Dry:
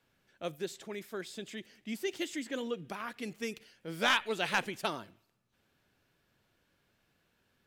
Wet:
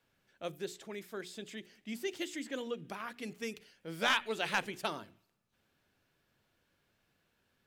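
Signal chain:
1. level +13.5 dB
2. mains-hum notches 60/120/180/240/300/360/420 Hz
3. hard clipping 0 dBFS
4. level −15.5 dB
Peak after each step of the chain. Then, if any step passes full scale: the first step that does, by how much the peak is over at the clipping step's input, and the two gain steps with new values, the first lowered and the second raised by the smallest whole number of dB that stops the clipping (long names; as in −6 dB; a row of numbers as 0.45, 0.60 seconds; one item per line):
−3.5, −3.0, −3.0, −18.5 dBFS
no step passes full scale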